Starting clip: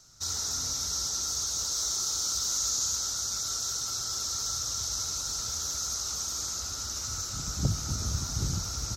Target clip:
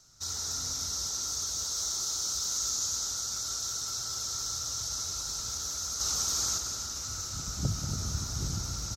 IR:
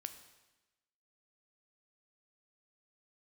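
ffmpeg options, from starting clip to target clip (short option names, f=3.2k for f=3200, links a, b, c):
-filter_complex "[0:a]asettb=1/sr,asplit=3[a][b][c];[a]atrim=end=6.004[d];[b]atrim=start=6:end=6.58,asetpts=PTS-STARTPTS,afade=t=in:d=0.004:c=qsin,afade=t=out:st=0.576:d=0.004:c=qsin,acontrast=51[e];[c]atrim=start=6.576[f];[d][e]acrossfade=d=0.004:c1=hsin:c2=qsin[g];[g][f]acrossfade=d=0.004:c1=qsin:c2=hsin,aecho=1:1:186.6|282.8:0.316|0.316,volume=-3dB"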